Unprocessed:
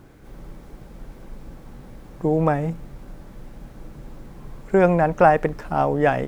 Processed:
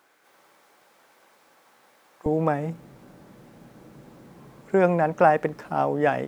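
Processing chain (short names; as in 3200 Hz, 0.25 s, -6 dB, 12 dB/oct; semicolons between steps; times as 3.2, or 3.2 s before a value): HPF 870 Hz 12 dB/oct, from 2.26 s 150 Hz; gain -3 dB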